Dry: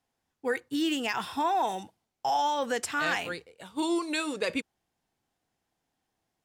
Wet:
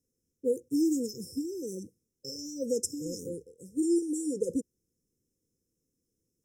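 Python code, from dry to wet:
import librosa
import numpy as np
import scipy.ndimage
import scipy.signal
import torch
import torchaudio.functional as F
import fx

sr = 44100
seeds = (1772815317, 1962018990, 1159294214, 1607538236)

y = fx.brickwall_bandstop(x, sr, low_hz=540.0, high_hz=5100.0)
y = y * librosa.db_to_amplitude(2.5)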